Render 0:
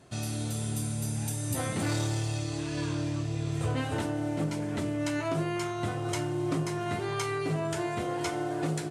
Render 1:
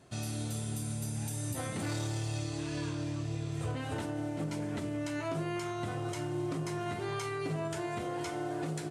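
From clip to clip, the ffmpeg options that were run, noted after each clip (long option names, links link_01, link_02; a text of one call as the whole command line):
ffmpeg -i in.wav -af "alimiter=limit=-24dB:level=0:latency=1:release=84,volume=-3dB" out.wav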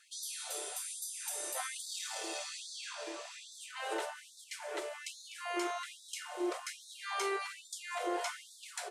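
ffmpeg -i in.wav -af "afftfilt=real='re*gte(b*sr/1024,320*pow(3500/320,0.5+0.5*sin(2*PI*1.2*pts/sr)))':imag='im*gte(b*sr/1024,320*pow(3500/320,0.5+0.5*sin(2*PI*1.2*pts/sr)))':win_size=1024:overlap=0.75,volume=3.5dB" out.wav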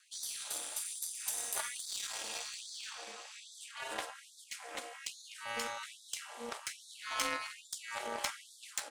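ffmpeg -i in.wav -af "aeval=exprs='val(0)*sin(2*PI*120*n/s)':channel_layout=same,highpass=frequency=1200:poles=1,aeval=exprs='0.0531*(cos(1*acos(clip(val(0)/0.0531,-1,1)))-cos(1*PI/2))+0.0119*(cos(3*acos(clip(val(0)/0.0531,-1,1)))-cos(3*PI/2))+0.000531*(cos(7*acos(clip(val(0)/0.0531,-1,1)))-cos(7*PI/2))':channel_layout=same,volume=13.5dB" out.wav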